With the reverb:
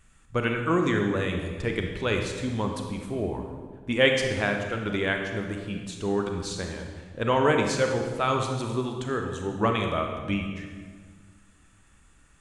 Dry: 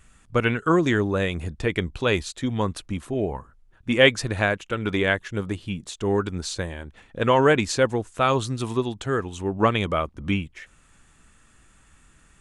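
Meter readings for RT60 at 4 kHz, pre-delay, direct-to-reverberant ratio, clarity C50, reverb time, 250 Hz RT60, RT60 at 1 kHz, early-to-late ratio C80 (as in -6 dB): 1.3 s, 29 ms, 3.0 dB, 4.0 dB, 1.7 s, 2.0 s, 1.5 s, 6.0 dB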